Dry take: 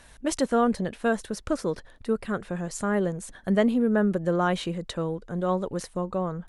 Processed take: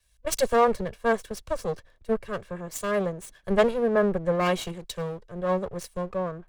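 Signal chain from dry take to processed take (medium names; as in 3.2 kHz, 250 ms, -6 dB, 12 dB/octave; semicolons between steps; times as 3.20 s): comb filter that takes the minimum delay 1.8 ms; three bands expanded up and down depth 70%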